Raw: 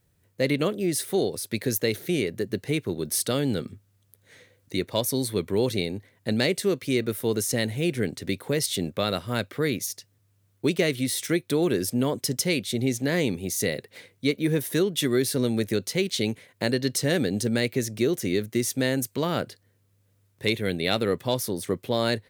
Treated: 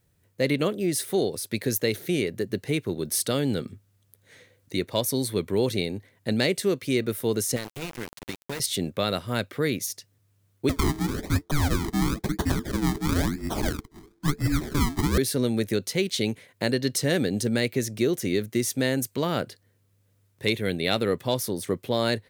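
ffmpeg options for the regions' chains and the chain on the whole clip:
-filter_complex "[0:a]asettb=1/sr,asplit=3[a][b][c];[a]atrim=end=7.564[d];[b]atrim=start=7.56:end=8.6,asetpts=PTS-STARTPTS,afade=t=in:d=0.004:c=qsin,afade=t=out:st=1.036:d=0.004:c=qsin,bandreject=f=50:t=h:w=6,bandreject=f=100:t=h:w=6,bandreject=f=150:t=h:w=6,bandreject=f=200:t=h:w=6,bandreject=f=250:t=h:w=6,bandreject=f=300:t=h:w=6,bandreject=f=350:t=h:w=6,bandreject=f=400:t=h:w=6,acrossover=split=1500|7900[e][f][g];[e]acompressor=threshold=-32dB:ratio=4[h];[f]acompressor=threshold=-38dB:ratio=4[i];[g]acompressor=threshold=-53dB:ratio=4[j];[h][i][j]amix=inputs=3:normalize=0,aeval=exprs='val(0)*gte(abs(val(0)),0.0266)':c=same[k];[c]atrim=start=8.596[l];[d][k]acrossfade=d=0.004:c1=hsin:c2=qsin[m];[m][l]acrossfade=d=0.004:c1=qsin:c2=hsin,asettb=1/sr,asplit=3[n][o][p];[n]atrim=end=10.694[q];[o]atrim=start=10.69:end=15.18,asetpts=PTS-STARTPTS,afade=t=in:d=0.004:c=qsin,afade=t=out:st=4.486:d=0.004:c=qsin,acrusher=samples=31:mix=1:aa=0.000001:lfo=1:lforange=31:lforate=1,bandreject=f=3.2k:w=5.2,afreqshift=-440[r];[p]atrim=start=15.176[s];[q][r]acrossfade=d=0.004:c1=hsin:c2=qsin[t];[t][s]acrossfade=d=0.004:c1=qsin:c2=hsin"

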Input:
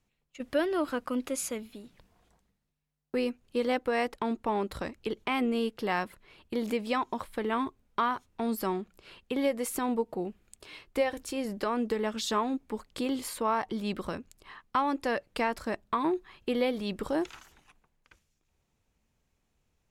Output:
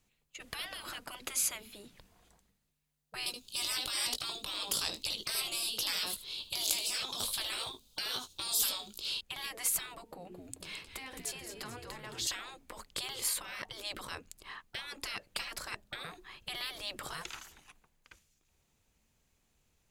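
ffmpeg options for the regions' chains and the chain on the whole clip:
-filter_complex "[0:a]asettb=1/sr,asplit=3[a][b][c];[a]atrim=end=3.264[d];[b]atrim=start=3.26:end=9.21,asetpts=PTS-STARTPTS,afade=t=in:d=0.004:c=qsin,afade=t=out:st=5.946:d=0.004:c=qsin,highshelf=f=2.7k:t=q:w=3:g=11.5,asplit=2[e][f];[f]adelay=19,volume=-8dB[g];[e][g]amix=inputs=2:normalize=0,atrim=end_sample=262395,aecho=1:1:76:0.211,atrim=end_sample=262395[h];[c]atrim=start=9.206[i];[d][h]acrossfade=d=0.004:c1=hsin:c2=qsin[j];[j][i]acrossfade=d=0.004:c1=qsin:c2=hsin,asettb=1/sr,asplit=3[k][l][m];[k]atrim=end=10.054[n];[l]atrim=start=10.05:end=12.27,asetpts=PTS-STARTPTS,afade=t=in:d=0.004:c=qsin,afade=t=out:st=2.216:d=0.004:c=qsin,bandreject=f=60:t=h:w=6,bandreject=f=120:t=h:w=6,bandreject=f=180:t=h:w=6,bandreject=f=240:t=h:w=6,bandreject=f=300:t=h:w=6,bandreject=f=360:t=h:w=6,bandreject=f=420:t=h:w=6,bandreject=f=480:t=h:w=6,acompressor=threshold=-41dB:ratio=2.5:attack=3.2:release=140:knee=1:detection=peak,asplit=7[o][p][q][r][s][t][u];[p]adelay=218,afreqshift=-94,volume=-9.5dB[v];[q]adelay=436,afreqshift=-188,volume=-15.3dB[w];[r]adelay=654,afreqshift=-282,volume=-21.2dB[x];[s]adelay=872,afreqshift=-376,volume=-27dB[y];[t]adelay=1090,afreqshift=-470,volume=-32.9dB[z];[u]adelay=1308,afreqshift=-564,volume=-38.7dB[aa];[o][v][w][x][y][z][aa]amix=inputs=7:normalize=0,atrim=end_sample=97902[ab];[m]atrim=start=12.266[ac];[n][ab]acrossfade=d=0.004:c1=hsin:c2=qsin[ad];[ad][ac]acrossfade=d=0.004:c1=qsin:c2=hsin,afftfilt=real='re*lt(hypot(re,im),0.0447)':imag='im*lt(hypot(re,im),0.0447)':win_size=1024:overlap=0.75,highshelf=f=2.7k:g=8,bandreject=f=5.5k:w=25"

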